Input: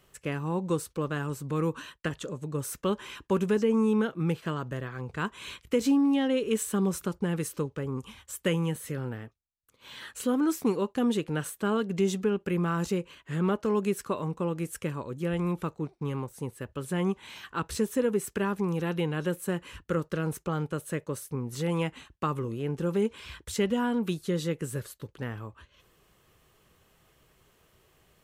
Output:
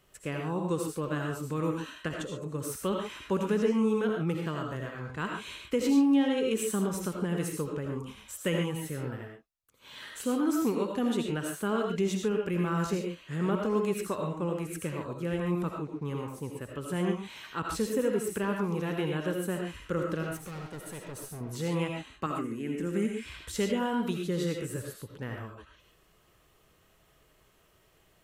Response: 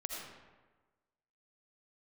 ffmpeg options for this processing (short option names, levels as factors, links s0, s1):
-filter_complex "[0:a]asettb=1/sr,asplit=3[s0][s1][s2];[s0]atrim=end=20.234[s3];[s1]atrim=start=20.23:end=21.41,asetpts=PTS-STARTPTS,afade=t=in:d=0.004:c=qsin,afade=t=out:st=1.176:d=0.004:c=qsin,asoftclip=type=hard:threshold=0.0158[s4];[s2]atrim=start=21.406[s5];[s3][s4]acrossfade=d=0.004:c1=hsin:c2=qsin[s6];[s6][s5]acrossfade=d=0.004:c1=qsin:c2=hsin,asettb=1/sr,asplit=3[s7][s8][s9];[s7]atrim=end=22.264[s10];[s8]atrim=start=22.26:end=23.26,asetpts=PTS-STARTPTS,afade=t=in:d=0.004:c=qsin,afade=t=out:st=0.996:d=0.004:c=qsin,equalizer=f=125:t=o:w=1:g=-11,equalizer=f=250:t=o:w=1:g=9,equalizer=f=500:t=o:w=1:g=-7,equalizer=f=1000:t=o:w=1:g=-10,equalizer=f=2000:t=o:w=1:g=9,equalizer=f=4000:t=o:w=1:g=-9,equalizer=f=8000:t=o:w=1:g=7[s11];[s9]atrim=start=23.256[s12];[s10][s11]acrossfade=d=0.004:c1=hsin:c2=qsin[s13];[s13][s12]acrossfade=d=0.004:c1=qsin:c2=hsin[s14];[1:a]atrim=start_sample=2205,atrim=end_sample=6615[s15];[s14][s15]afir=irnorm=-1:irlink=0"